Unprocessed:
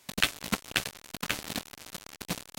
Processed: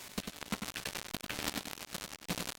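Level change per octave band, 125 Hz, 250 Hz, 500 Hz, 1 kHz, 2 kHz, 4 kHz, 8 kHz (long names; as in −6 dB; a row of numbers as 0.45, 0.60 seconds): −4.0, −3.5, −3.5, −5.0, −9.0, −7.5, −4.5 decibels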